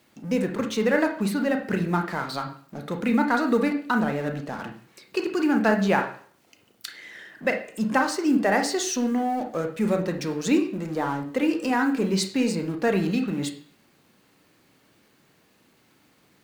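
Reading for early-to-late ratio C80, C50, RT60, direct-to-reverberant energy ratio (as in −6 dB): 14.0 dB, 9.0 dB, 0.50 s, 4.0 dB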